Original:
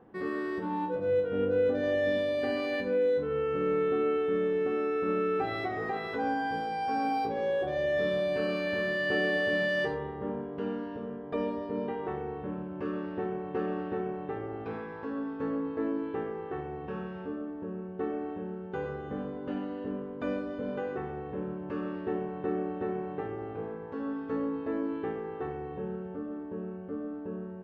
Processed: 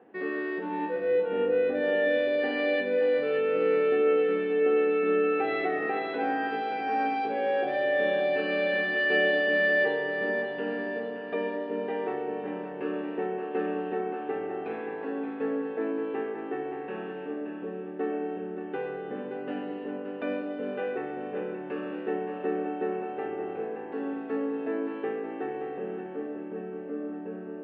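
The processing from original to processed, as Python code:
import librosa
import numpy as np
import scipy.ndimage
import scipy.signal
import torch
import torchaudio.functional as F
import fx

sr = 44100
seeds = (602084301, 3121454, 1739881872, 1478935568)

y = fx.cabinet(x, sr, low_hz=260.0, low_slope=12, high_hz=4000.0, hz=(270.0, 430.0, 690.0, 1100.0, 1800.0, 2600.0), db=(3, 4, 4, -4, 5, 8))
y = fx.echo_feedback(y, sr, ms=574, feedback_pct=51, wet_db=-8)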